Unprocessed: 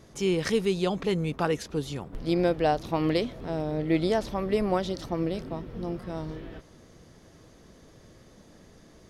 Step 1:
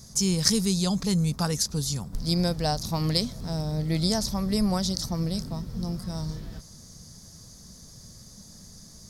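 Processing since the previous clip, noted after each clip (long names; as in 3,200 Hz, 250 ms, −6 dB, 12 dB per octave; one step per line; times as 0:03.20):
drawn EQ curve 210 Hz 0 dB, 320 Hz −15 dB, 1,000 Hz −8 dB, 2,900 Hz −12 dB, 4,800 Hz +10 dB
level +6 dB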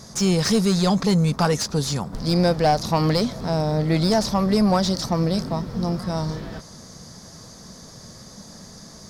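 mid-hump overdrive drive 21 dB, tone 1,100 Hz, clips at −5 dBFS
in parallel at −8 dB: hard clipping −20.5 dBFS, distortion −11 dB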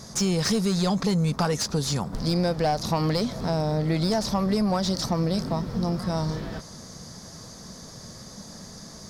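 downward compressor 3 to 1, threshold −22 dBFS, peak gain reduction 6 dB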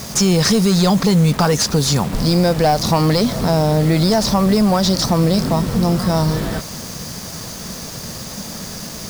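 in parallel at +2 dB: brickwall limiter −21.5 dBFS, peak gain reduction 7.5 dB
on the sum: bit reduction 6 bits
level +4.5 dB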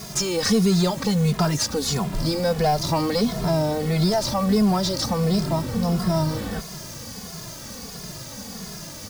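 barber-pole flanger 2.4 ms −1.5 Hz
level −3.5 dB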